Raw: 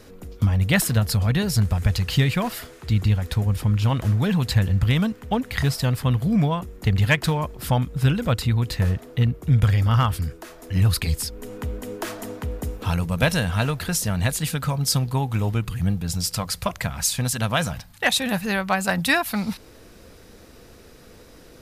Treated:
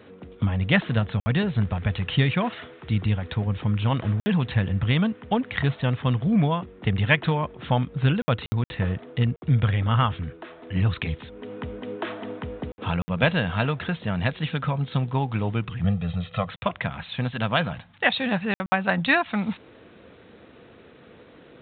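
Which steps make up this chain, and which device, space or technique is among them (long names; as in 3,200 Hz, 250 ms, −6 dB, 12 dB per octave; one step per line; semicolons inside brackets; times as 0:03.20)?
call with lost packets (high-pass filter 120 Hz 12 dB per octave; downsampling to 8,000 Hz; dropped packets of 60 ms)
0:15.84–0:16.49: comb filter 1.6 ms, depth 91%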